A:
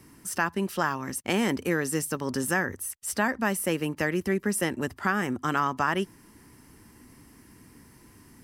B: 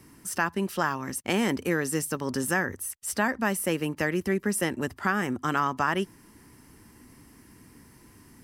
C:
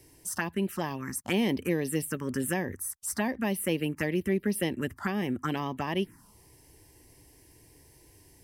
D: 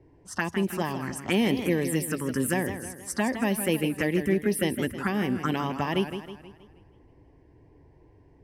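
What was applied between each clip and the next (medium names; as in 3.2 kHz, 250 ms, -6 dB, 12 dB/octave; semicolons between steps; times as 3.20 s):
no audible change
touch-sensitive phaser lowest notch 200 Hz, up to 1.4 kHz, full sweep at -23 dBFS
level-controlled noise filter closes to 990 Hz, open at -28 dBFS; modulated delay 159 ms, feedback 47%, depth 134 cents, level -9.5 dB; trim +3 dB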